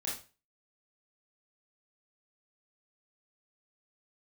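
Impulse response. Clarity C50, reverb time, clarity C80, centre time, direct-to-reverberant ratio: 4.5 dB, 0.35 s, 11.0 dB, 38 ms, -6.0 dB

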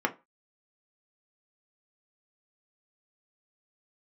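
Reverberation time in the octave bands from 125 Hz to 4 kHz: 0.25 s, 0.25 s, 0.25 s, 0.30 s, 0.25 s, 0.20 s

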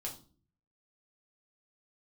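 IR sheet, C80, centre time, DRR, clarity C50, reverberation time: 15.5 dB, 17 ms, -2.0 dB, 10.5 dB, 0.40 s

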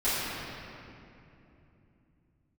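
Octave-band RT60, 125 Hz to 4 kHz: 4.8 s, 4.3 s, 3.2 s, 2.6 s, 2.4 s, 1.8 s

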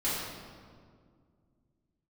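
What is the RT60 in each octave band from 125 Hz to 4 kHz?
2.9 s, 2.8 s, 2.2 s, 1.8 s, 1.4 s, 1.2 s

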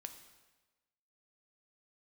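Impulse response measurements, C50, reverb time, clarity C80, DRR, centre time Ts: 9.5 dB, 1.2 s, 11.0 dB, 6.5 dB, 16 ms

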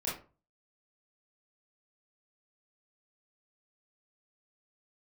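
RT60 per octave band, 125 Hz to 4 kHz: 0.50 s, 0.40 s, 0.35 s, 0.35 s, 0.30 s, 0.20 s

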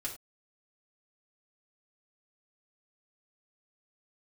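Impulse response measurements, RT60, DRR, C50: no single decay rate, -4.0 dB, 9.0 dB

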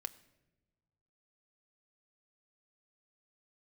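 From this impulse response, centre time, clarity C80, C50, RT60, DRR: 4 ms, 20.0 dB, 18.5 dB, no single decay rate, 8.5 dB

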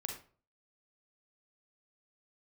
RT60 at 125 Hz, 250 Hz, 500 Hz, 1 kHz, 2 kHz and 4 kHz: 0.55 s, 0.45 s, 0.45 s, 0.40 s, 0.35 s, 0.30 s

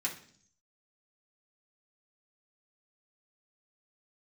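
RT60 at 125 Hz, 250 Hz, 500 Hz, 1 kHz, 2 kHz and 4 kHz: 0.85 s, 0.80 s, 0.60 s, 0.50 s, 0.50 s, 0.70 s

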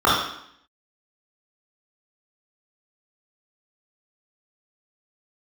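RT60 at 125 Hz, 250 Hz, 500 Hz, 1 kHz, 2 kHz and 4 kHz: 0.60 s, 0.80 s, 0.65 s, 0.70 s, 0.70 s, 0.70 s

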